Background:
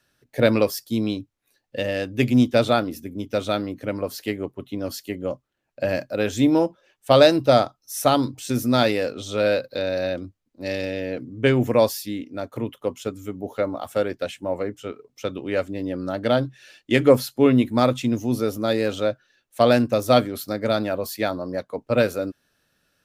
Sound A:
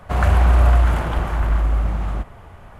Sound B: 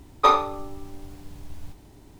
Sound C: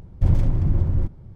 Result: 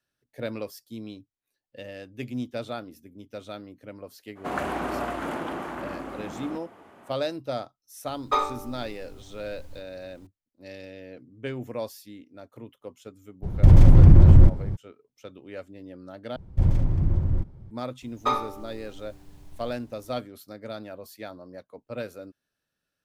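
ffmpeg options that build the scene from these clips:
ffmpeg -i bed.wav -i cue0.wav -i cue1.wav -i cue2.wav -filter_complex "[2:a]asplit=2[link_01][link_02];[3:a]asplit=2[link_03][link_04];[0:a]volume=-15dB[link_05];[1:a]highpass=frequency=280:width_type=q:width=2.5[link_06];[link_03]alimiter=level_in=15.5dB:limit=-1dB:release=50:level=0:latency=1[link_07];[link_05]asplit=2[link_08][link_09];[link_08]atrim=end=16.364[link_10];[link_04]atrim=end=1.35,asetpts=PTS-STARTPTS,volume=-3dB[link_11];[link_09]atrim=start=17.706[link_12];[link_06]atrim=end=2.79,asetpts=PTS-STARTPTS,volume=-7dB,afade=type=in:duration=0.02,afade=type=out:start_time=2.77:duration=0.02,adelay=4350[link_13];[link_01]atrim=end=2.19,asetpts=PTS-STARTPTS,volume=-6.5dB,afade=type=in:duration=0.004:curve=hsin,afade=type=out:start_time=2.186:duration=0.004:curve=hsin,adelay=8080[link_14];[link_07]atrim=end=1.35,asetpts=PTS-STARTPTS,volume=-3dB,afade=type=in:duration=0.02,afade=type=out:start_time=1.33:duration=0.02,adelay=13420[link_15];[link_02]atrim=end=2.19,asetpts=PTS-STARTPTS,volume=-7.5dB,afade=type=in:duration=0.004:curve=hsin,afade=type=out:start_time=2.186:duration=0.004:curve=hsin,adelay=18020[link_16];[link_10][link_11]acrossfade=duration=0.004:curve1=hsin:curve2=hsin[link_17];[link_17][link_12]acrossfade=duration=0.004:curve1=hsin:curve2=hsin[link_18];[link_18][link_13][link_14][link_15][link_16]amix=inputs=5:normalize=0" out.wav

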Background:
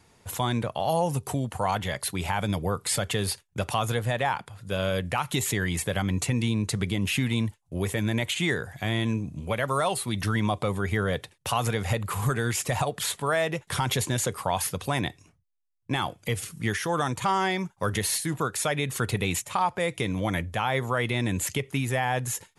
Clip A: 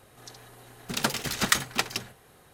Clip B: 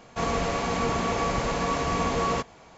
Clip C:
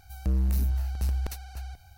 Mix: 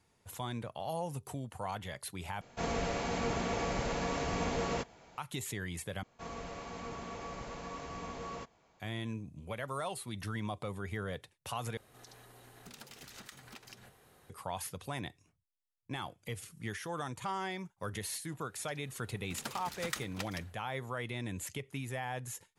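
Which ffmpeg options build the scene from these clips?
ffmpeg -i bed.wav -i cue0.wav -i cue1.wav -filter_complex "[2:a]asplit=2[link_01][link_02];[1:a]asplit=2[link_03][link_04];[0:a]volume=-12.5dB[link_05];[link_01]bandreject=frequency=1100:width=7.8[link_06];[link_03]acompressor=threshold=-42dB:ratio=6:attack=3.2:release=140:knee=1:detection=peak[link_07];[link_05]asplit=4[link_08][link_09][link_10][link_11];[link_08]atrim=end=2.414[link_12];[link_06]atrim=end=2.77,asetpts=PTS-STARTPTS,volume=-7dB[link_13];[link_09]atrim=start=5.176:end=6.034[link_14];[link_02]atrim=end=2.77,asetpts=PTS-STARTPTS,volume=-17dB[link_15];[link_10]atrim=start=8.796:end=11.774[link_16];[link_07]atrim=end=2.53,asetpts=PTS-STARTPTS,volume=-6.5dB[link_17];[link_11]atrim=start=14.296[link_18];[link_04]atrim=end=2.53,asetpts=PTS-STARTPTS,volume=-15.5dB,afade=type=in:duration=0.004:curve=hsin,afade=type=out:start_time=2.526:duration=0.004:curve=hsin,adelay=18410[link_19];[link_12][link_13]acrossfade=duration=0.004:curve1=hsin:curve2=hsin[link_20];[link_20][link_14]acrossfade=duration=0.004:curve1=hsin:curve2=hsin[link_21];[link_21][link_15]acrossfade=duration=0.004:curve1=hsin:curve2=hsin[link_22];[link_22][link_16]acrossfade=duration=0.004:curve1=hsin:curve2=hsin[link_23];[link_23][link_17]acrossfade=duration=0.004:curve1=hsin:curve2=hsin[link_24];[link_24][link_18]acrossfade=duration=0.004:curve1=hsin:curve2=hsin[link_25];[link_25][link_19]amix=inputs=2:normalize=0" out.wav

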